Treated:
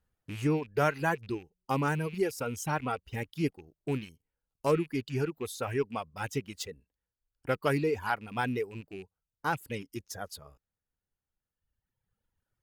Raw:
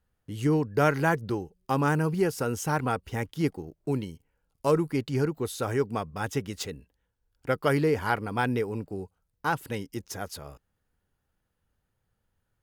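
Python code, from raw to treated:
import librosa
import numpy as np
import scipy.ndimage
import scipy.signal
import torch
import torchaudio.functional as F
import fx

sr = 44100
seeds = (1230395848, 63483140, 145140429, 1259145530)

y = fx.rattle_buzz(x, sr, strikes_db=-34.0, level_db=-30.0)
y = fx.dereverb_blind(y, sr, rt60_s=2.0)
y = y * librosa.db_to_amplitude(-3.0)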